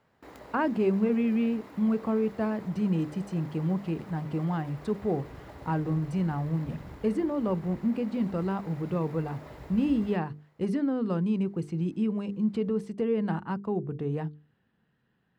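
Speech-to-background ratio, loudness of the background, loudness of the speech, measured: 18.5 dB, −48.0 LKFS, −29.5 LKFS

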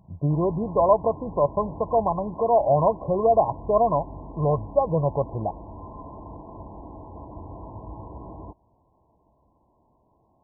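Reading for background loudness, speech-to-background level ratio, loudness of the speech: −41.0 LKFS, 18.0 dB, −23.0 LKFS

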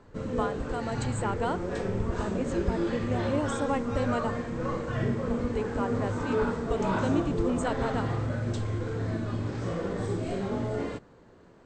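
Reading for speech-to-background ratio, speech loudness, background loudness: −3.0 dB, −34.0 LKFS, −31.0 LKFS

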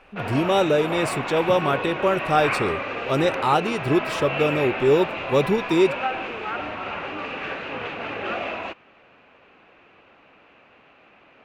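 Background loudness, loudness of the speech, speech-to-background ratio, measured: −28.5 LKFS, −22.5 LKFS, 6.0 dB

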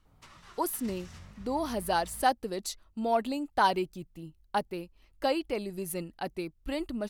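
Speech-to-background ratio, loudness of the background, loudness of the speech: 19.5 dB, −51.5 LKFS, −32.0 LKFS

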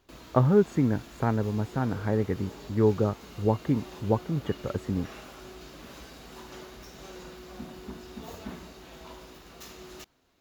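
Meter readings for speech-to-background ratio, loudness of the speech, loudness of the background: 17.5 dB, −27.5 LKFS, −45.0 LKFS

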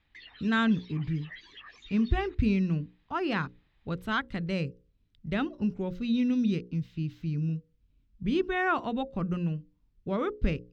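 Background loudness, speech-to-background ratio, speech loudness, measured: −49.5 LKFS, 19.0 dB, −30.5 LKFS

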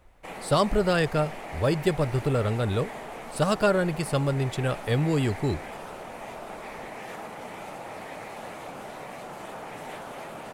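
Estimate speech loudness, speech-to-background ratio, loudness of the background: −26.0 LKFS, 13.0 dB, −39.0 LKFS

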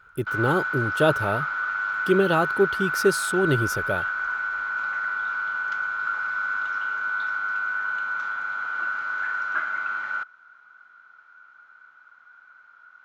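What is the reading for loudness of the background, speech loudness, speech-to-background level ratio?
−26.5 LKFS, −24.5 LKFS, 2.0 dB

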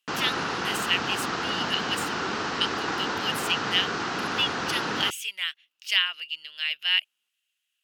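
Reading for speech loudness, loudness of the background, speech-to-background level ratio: −28.0 LKFS, −29.0 LKFS, 1.0 dB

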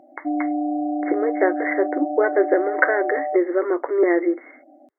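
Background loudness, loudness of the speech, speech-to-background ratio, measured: −26.0 LKFS, −21.5 LKFS, 4.5 dB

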